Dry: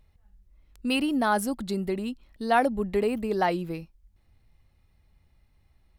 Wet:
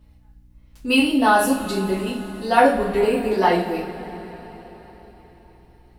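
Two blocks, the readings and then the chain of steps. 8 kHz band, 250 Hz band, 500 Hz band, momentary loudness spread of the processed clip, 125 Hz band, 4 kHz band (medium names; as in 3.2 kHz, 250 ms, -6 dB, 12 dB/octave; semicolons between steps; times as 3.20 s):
+8.0 dB, +6.5 dB, +8.0 dB, 18 LU, +5.0 dB, +8.5 dB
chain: two-slope reverb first 0.39 s, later 4.5 s, from -20 dB, DRR -10 dB; hum 60 Hz, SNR 32 dB; trim -2.5 dB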